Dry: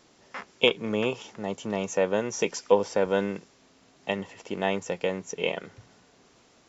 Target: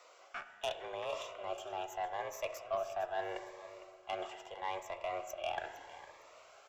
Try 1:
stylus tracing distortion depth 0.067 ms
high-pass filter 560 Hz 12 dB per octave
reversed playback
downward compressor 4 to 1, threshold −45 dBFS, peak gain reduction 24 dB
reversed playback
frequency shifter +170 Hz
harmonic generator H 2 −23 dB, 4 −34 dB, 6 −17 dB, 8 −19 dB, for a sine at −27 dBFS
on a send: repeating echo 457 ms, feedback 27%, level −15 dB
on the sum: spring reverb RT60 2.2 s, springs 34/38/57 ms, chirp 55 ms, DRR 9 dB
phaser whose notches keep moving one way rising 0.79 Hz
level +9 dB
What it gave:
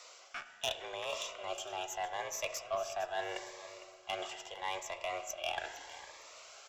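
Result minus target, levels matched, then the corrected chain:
4,000 Hz band +5.5 dB
stylus tracing distortion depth 0.067 ms
high-pass filter 560 Hz 12 dB per octave
parametric band 5,600 Hz −13 dB 2.6 octaves
reversed playback
downward compressor 4 to 1, threshold −45 dBFS, peak gain reduction 21.5 dB
reversed playback
frequency shifter +170 Hz
harmonic generator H 2 −23 dB, 4 −34 dB, 6 −17 dB, 8 −19 dB, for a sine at −27 dBFS
on a send: repeating echo 457 ms, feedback 27%, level −15 dB
on the sum: spring reverb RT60 2.2 s, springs 34/38/57 ms, chirp 55 ms, DRR 9 dB
phaser whose notches keep moving one way rising 0.79 Hz
level +9 dB

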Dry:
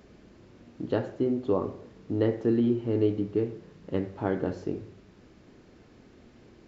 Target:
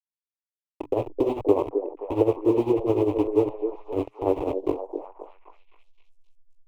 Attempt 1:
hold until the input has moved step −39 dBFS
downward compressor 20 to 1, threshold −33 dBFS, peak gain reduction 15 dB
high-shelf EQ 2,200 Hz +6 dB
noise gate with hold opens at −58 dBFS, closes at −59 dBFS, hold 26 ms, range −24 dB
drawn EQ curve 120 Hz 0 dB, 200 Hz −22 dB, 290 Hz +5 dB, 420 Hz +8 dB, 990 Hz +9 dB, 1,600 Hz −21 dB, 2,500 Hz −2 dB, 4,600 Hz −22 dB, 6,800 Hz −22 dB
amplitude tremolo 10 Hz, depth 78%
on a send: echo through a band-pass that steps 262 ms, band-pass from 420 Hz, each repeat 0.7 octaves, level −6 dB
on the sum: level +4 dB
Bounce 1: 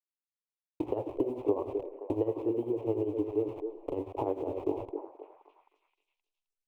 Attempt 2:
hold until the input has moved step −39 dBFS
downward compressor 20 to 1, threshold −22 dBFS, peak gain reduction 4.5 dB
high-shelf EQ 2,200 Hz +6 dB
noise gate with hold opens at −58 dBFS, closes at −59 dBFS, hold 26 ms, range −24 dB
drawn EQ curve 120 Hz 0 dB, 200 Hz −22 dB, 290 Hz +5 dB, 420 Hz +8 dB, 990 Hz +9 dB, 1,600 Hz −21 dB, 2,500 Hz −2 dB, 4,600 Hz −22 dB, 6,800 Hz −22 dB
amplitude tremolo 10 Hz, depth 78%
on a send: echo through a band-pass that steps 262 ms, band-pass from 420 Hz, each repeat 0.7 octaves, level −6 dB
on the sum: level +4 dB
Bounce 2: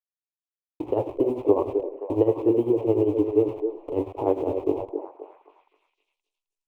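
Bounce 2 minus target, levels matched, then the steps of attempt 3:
hold until the input has moved: distortion −9 dB
hold until the input has moved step −29 dBFS
downward compressor 20 to 1, threshold −22 dBFS, peak gain reduction 4.5 dB
high-shelf EQ 2,200 Hz +6 dB
noise gate with hold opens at −58 dBFS, closes at −59 dBFS, hold 26 ms, range −24 dB
drawn EQ curve 120 Hz 0 dB, 200 Hz −22 dB, 290 Hz +5 dB, 420 Hz +8 dB, 990 Hz +9 dB, 1,600 Hz −21 dB, 2,500 Hz −2 dB, 4,600 Hz −22 dB, 6,800 Hz −22 dB
amplitude tremolo 10 Hz, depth 78%
on a send: echo through a band-pass that steps 262 ms, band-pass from 420 Hz, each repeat 0.7 octaves, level −6 dB
on the sum: level +4 dB

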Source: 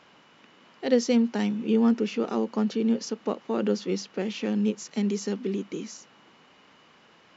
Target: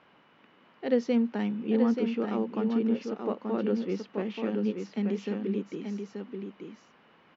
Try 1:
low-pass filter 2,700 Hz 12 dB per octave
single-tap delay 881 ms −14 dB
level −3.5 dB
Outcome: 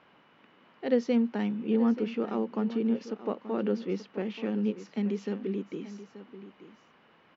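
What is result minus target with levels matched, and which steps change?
echo-to-direct −8.5 dB
change: single-tap delay 881 ms −5.5 dB

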